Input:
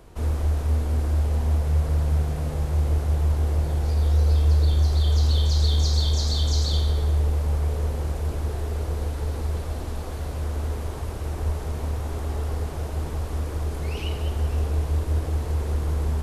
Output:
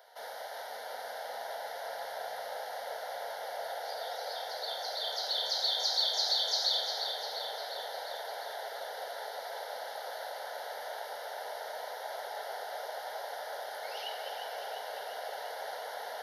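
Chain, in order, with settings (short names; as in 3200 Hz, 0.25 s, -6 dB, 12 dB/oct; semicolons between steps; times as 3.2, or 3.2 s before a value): HPF 580 Hz 24 dB/oct; fixed phaser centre 1700 Hz, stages 8; tape echo 0.351 s, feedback 82%, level -5 dB, low-pass 5000 Hz; gain +1.5 dB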